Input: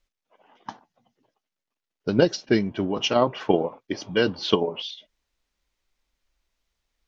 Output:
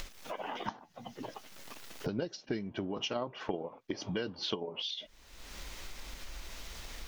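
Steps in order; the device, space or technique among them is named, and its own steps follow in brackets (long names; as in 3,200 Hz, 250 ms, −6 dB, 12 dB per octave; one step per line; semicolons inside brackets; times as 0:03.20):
upward and downward compression (upward compression, threshold −21 dBFS; downward compressor 4 to 1, threshold −38 dBFS, peak gain reduction 21.5 dB)
level +2 dB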